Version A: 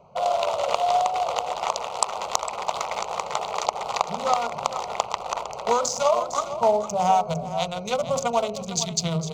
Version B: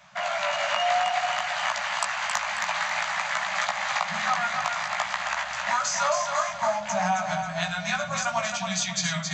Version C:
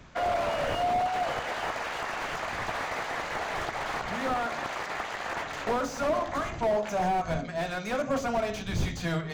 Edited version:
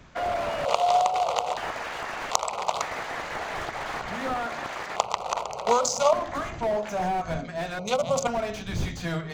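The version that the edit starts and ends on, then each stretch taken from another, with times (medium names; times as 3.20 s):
C
0.65–1.57 s: from A
2.31–2.82 s: from A
4.96–6.13 s: from A
7.79–8.27 s: from A
not used: B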